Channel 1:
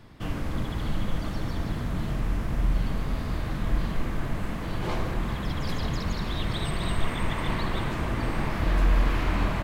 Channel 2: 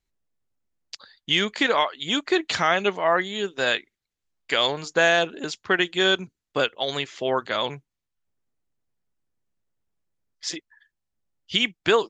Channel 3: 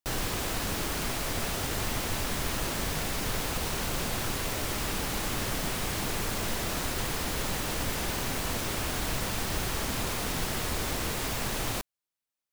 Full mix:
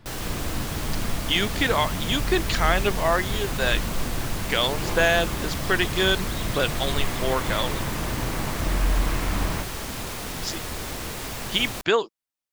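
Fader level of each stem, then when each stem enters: -1.0 dB, -1.5 dB, -1.0 dB; 0.00 s, 0.00 s, 0.00 s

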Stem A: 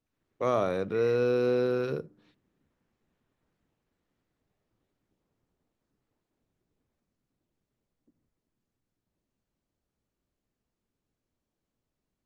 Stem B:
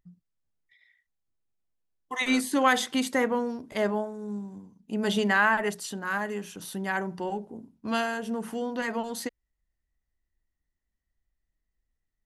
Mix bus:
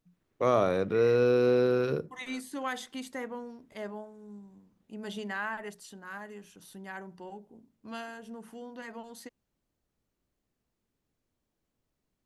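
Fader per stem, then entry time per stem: +2.0 dB, -12.5 dB; 0.00 s, 0.00 s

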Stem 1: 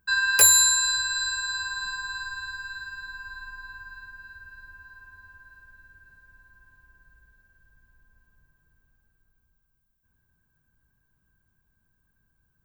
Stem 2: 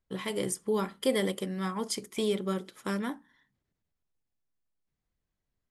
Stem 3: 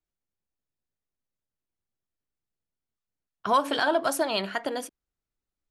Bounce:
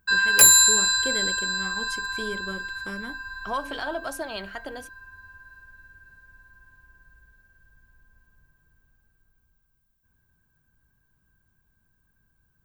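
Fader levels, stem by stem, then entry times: +2.5 dB, -5.5 dB, -7.0 dB; 0.00 s, 0.00 s, 0.00 s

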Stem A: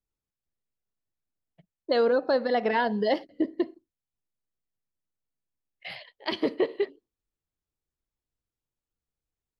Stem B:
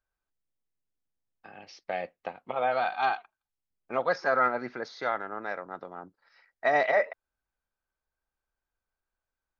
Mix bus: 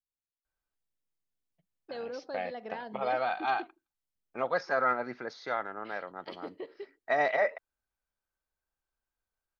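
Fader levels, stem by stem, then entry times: -16.5 dB, -3.0 dB; 0.00 s, 0.45 s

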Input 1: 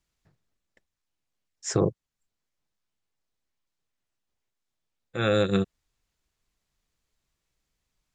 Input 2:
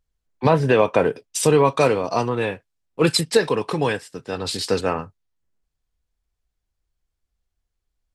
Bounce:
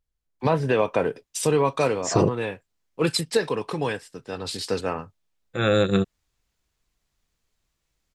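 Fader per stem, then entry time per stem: +3.0 dB, -5.0 dB; 0.40 s, 0.00 s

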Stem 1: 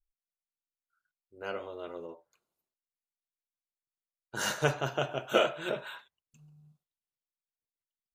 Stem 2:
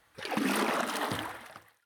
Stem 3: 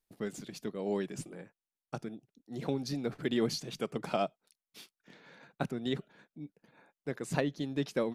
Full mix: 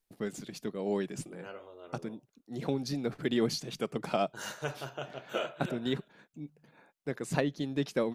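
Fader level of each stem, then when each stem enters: -8.5 dB, mute, +1.5 dB; 0.00 s, mute, 0.00 s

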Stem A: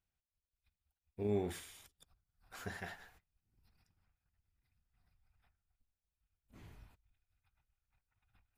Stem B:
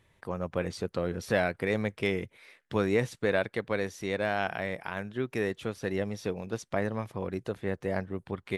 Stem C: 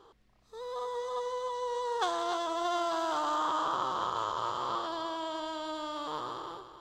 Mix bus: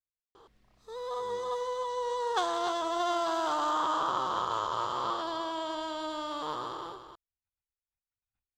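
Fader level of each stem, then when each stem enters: -19.5 dB, mute, +1.5 dB; 0.00 s, mute, 0.35 s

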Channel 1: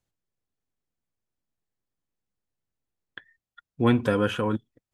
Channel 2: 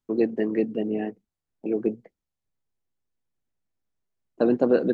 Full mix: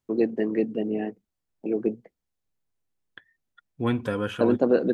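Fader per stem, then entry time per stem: -4.5 dB, -0.5 dB; 0.00 s, 0.00 s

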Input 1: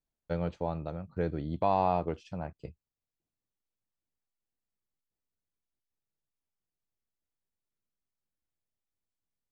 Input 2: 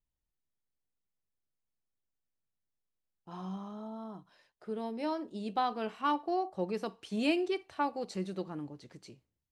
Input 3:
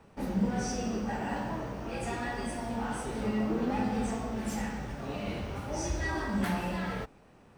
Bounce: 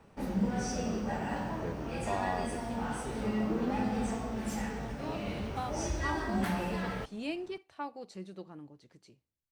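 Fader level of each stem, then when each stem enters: -8.5 dB, -7.5 dB, -1.5 dB; 0.45 s, 0.00 s, 0.00 s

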